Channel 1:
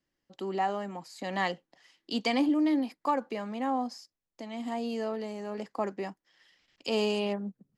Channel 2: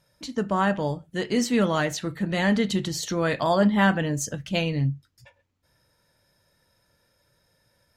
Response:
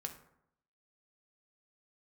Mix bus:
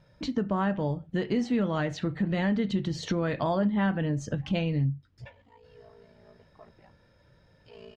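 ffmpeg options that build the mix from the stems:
-filter_complex "[0:a]aecho=1:1:6.5:0.94,flanger=delay=8.1:depth=6.6:regen=67:speed=0.65:shape=sinusoidal,aeval=exprs='val(0)*sin(2*PI*28*n/s)':c=same,adelay=800,volume=0.15[s0];[1:a]lowshelf=f=420:g=7.5,volume=1.41[s1];[s0][s1]amix=inputs=2:normalize=0,lowpass=3700,acompressor=threshold=0.0398:ratio=3"

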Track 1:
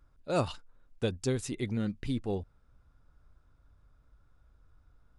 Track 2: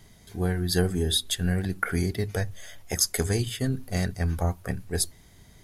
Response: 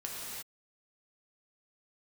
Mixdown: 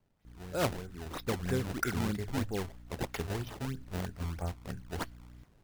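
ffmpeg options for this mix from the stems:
-filter_complex "[0:a]aeval=exprs='val(0)+0.00398*(sin(2*PI*60*n/s)+sin(2*PI*2*60*n/s)/2+sin(2*PI*3*60*n/s)/3+sin(2*PI*4*60*n/s)/4+sin(2*PI*5*60*n/s)/5)':c=same,adelay=250,volume=0.75[s0];[1:a]volume=0.299,afade=t=in:st=0.88:d=0.75:silence=0.298538[s1];[s0][s1]amix=inputs=2:normalize=0,adynamicequalizer=threshold=0.00141:dfrequency=1500:dqfactor=2.8:tfrequency=1500:tqfactor=2.8:attack=5:release=100:ratio=0.375:range=3:mode=boostabove:tftype=bell,acrusher=samples=23:mix=1:aa=0.000001:lfo=1:lforange=36.8:lforate=3.1"

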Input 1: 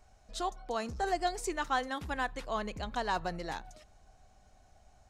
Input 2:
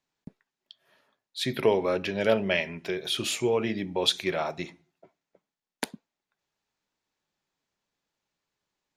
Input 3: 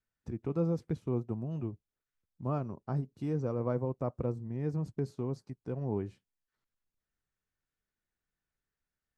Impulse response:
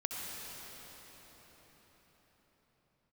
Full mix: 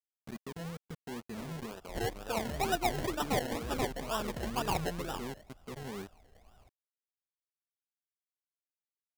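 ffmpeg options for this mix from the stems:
-filter_complex "[0:a]highshelf=f=8700:g=10,adelay=1600,volume=1[s0];[1:a]acompressor=threshold=0.02:ratio=3,volume=0.266[s1];[2:a]bandreject=f=1700:w=8,aecho=1:1:4.6:0.7,alimiter=level_in=1.19:limit=0.0631:level=0:latency=1:release=169,volume=0.841,volume=0.501[s2];[s1][s2]amix=inputs=2:normalize=0,acrusher=bits=6:mix=0:aa=0.5,alimiter=level_in=2.99:limit=0.0631:level=0:latency=1:release=19,volume=0.335,volume=1[s3];[s0][s3]amix=inputs=2:normalize=0,acrusher=samples=29:mix=1:aa=0.000001:lfo=1:lforange=17.4:lforate=2.1"

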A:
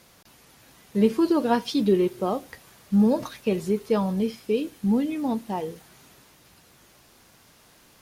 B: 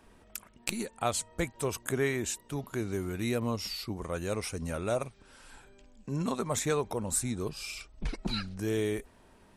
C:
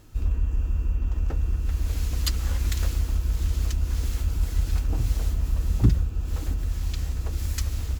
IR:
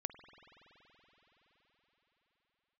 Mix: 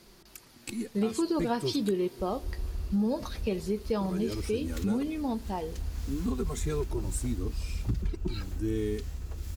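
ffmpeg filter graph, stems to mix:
-filter_complex "[0:a]equalizer=f=4600:t=o:w=0.41:g=7,volume=0.501,asplit=3[s0][s1][s2];[s1]volume=0.211[s3];[1:a]lowshelf=f=460:t=q:w=3:g=6,asplit=2[s4][s5];[s5]adelay=2.5,afreqshift=-0.75[s6];[s4][s6]amix=inputs=2:normalize=1,volume=0.631,asplit=3[s7][s8][s9];[s7]atrim=end=1.91,asetpts=PTS-STARTPTS,afade=t=out:st=1.906:d=0.004:c=hsin[s10];[s8]atrim=start=1.91:end=4.01,asetpts=PTS-STARTPTS,volume=0[s11];[s9]atrim=start=4.01,asetpts=PTS-STARTPTS,afade=t=in:d=0.004:c=hsin[s12];[s10][s11][s12]concat=n=3:v=0:a=1[s13];[2:a]adelay=2050,volume=0.335[s14];[s2]apad=whole_len=442946[s15];[s14][s15]sidechaincompress=threshold=0.00447:ratio=4:attack=16:release=103[s16];[3:a]atrim=start_sample=2205[s17];[s3][s17]afir=irnorm=-1:irlink=0[s18];[s0][s13][s16][s18]amix=inputs=4:normalize=0,acompressor=threshold=0.0562:ratio=3"

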